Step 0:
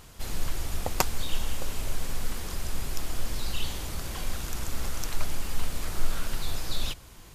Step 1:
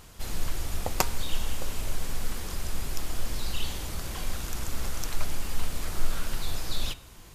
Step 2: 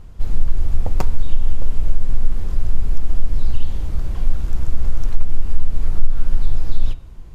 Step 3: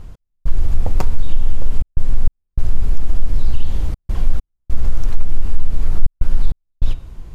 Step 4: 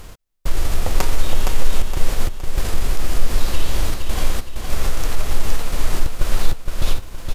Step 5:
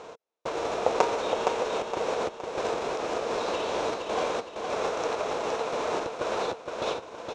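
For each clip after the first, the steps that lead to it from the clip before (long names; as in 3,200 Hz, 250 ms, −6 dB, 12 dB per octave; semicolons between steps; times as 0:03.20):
hum removal 134.7 Hz, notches 36
spectral tilt −3.5 dB per octave; downward compressor 4 to 1, threshold −3 dBFS, peak gain reduction 8 dB; level −2 dB
in parallel at +1 dB: brickwall limiter −11 dBFS, peak gain reduction 9.5 dB; on the sum: gate pattern "x..xxxxxxxxx.x" 99 BPM −60 dB; level −2.5 dB
spectral envelope flattened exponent 0.6; on a send: repeating echo 466 ms, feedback 42%, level −5 dB; on the sum: level −4 dB
loudspeaker in its box 340–5,500 Hz, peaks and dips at 460 Hz +10 dB, 660 Hz +6 dB, 940 Hz +5 dB, 1,900 Hz −7 dB, 3,100 Hz −6 dB, 4,700 Hz −10 dB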